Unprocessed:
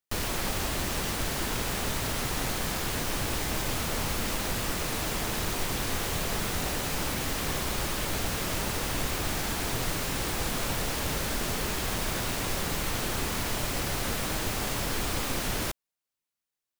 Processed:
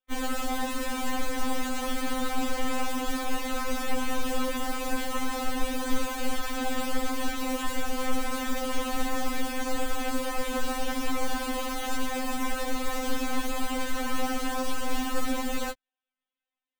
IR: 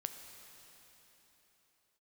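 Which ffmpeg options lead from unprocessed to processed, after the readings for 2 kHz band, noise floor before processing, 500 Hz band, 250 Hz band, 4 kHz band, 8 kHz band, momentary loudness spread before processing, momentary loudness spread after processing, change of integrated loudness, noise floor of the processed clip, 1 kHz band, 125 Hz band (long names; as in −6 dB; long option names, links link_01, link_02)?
−1.0 dB, below −85 dBFS, +1.5 dB, +4.0 dB, −3.5 dB, −5.0 dB, 0 LU, 1 LU, −1.5 dB, below −85 dBFS, +3.0 dB, below −10 dB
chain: -filter_complex "[0:a]aresample=8000,aresample=44100,acrossover=split=180|1300[link_01][link_02][link_03];[link_02]aeval=exprs='0.0668*(cos(1*acos(clip(val(0)/0.0668,-1,1)))-cos(1*PI/2))+0.0237*(cos(4*acos(clip(val(0)/0.0668,-1,1)))-cos(4*PI/2))':channel_layout=same[link_04];[link_03]aeval=exprs='(mod(59.6*val(0)+1,2)-1)/59.6':channel_layout=same[link_05];[link_01][link_04][link_05]amix=inputs=3:normalize=0,afftfilt=real='re*3.46*eq(mod(b,12),0)':imag='im*3.46*eq(mod(b,12),0)':win_size=2048:overlap=0.75,volume=4.5dB"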